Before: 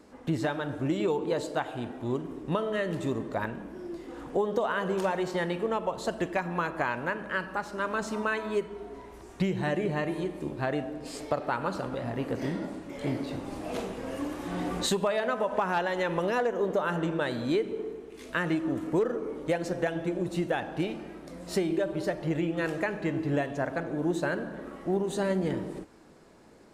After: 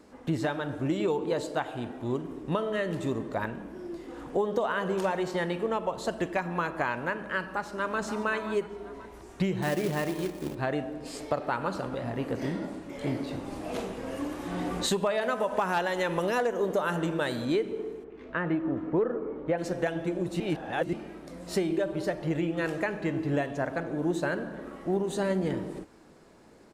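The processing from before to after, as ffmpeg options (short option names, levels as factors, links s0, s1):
-filter_complex "[0:a]asplit=2[s0][s1];[s1]afade=t=in:st=7.43:d=0.01,afade=t=out:st=8.01:d=0.01,aecho=0:1:530|1060|1590:0.316228|0.0948683|0.0284605[s2];[s0][s2]amix=inputs=2:normalize=0,asettb=1/sr,asplit=3[s3][s4][s5];[s3]atrim=end=9.624[s6];[s4]atrim=start=9.62:end=10.55,asetpts=PTS-STARTPTS,afade=t=in:d=0.004:c=qsin,afade=t=out:st=0.926:d=0.004:c=qsin,acrusher=bits=3:mode=log:mix=0:aa=0.000001[s7];[s5]atrim=start=10.546[s8];[s6][s7]acrossfade=d=0.004:c1=hsin:c2=qsin[s9];[s9][s8]acrossfade=d=0.004:c1=qsin:c2=hsin,asettb=1/sr,asplit=3[s10][s11][s12];[s10]atrim=end=15.214[s13];[s11]atrim=start=15.21:end=17.45,asetpts=PTS-STARTPTS,afade=t=in:d=0.004:c=qsin,afade=t=out:st=2.236:d=0.004:c=qsin,highshelf=f=6500:g=11[s14];[s12]atrim=start=17.446[s15];[s13][s14]acrossfade=d=0.004:c1=hsin:c2=qsin[s16];[s16][s15]acrossfade=d=0.004:c1=qsin:c2=hsin,asplit=3[s17][s18][s19];[s17]afade=t=out:st=18.03:d=0.02[s20];[s18]lowpass=1800,afade=t=in:st=18.03:d=0.02,afade=t=out:st=19.57:d=0.02[s21];[s19]afade=t=in:st=19.57:d=0.02[s22];[s20][s21][s22]amix=inputs=3:normalize=0,asplit=3[s23][s24][s25];[s23]atrim=end=20.402[s26];[s24]atrim=start=20.398:end=20.932,asetpts=PTS-STARTPTS,areverse[s27];[s25]atrim=start=20.928[s28];[s26][s27]acrossfade=d=0.004:c1=hsin:c2=hsin[s29];[s29][s28]acrossfade=d=0.004:c1=hsin:c2=hsin"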